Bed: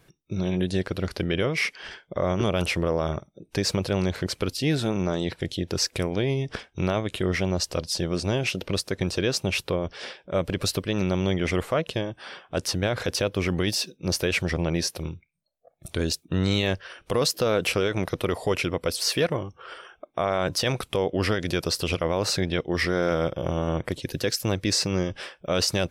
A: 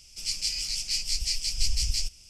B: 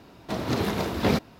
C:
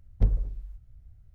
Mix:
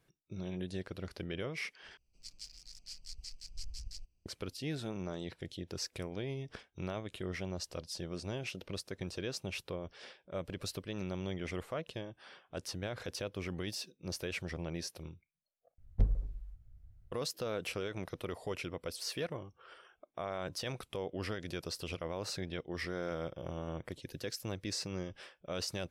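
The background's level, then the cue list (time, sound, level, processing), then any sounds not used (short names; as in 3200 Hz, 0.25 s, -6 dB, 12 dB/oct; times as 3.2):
bed -14.5 dB
1.97 replace with A -17 dB + Wiener smoothing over 25 samples
15.78 replace with C -6 dB
not used: B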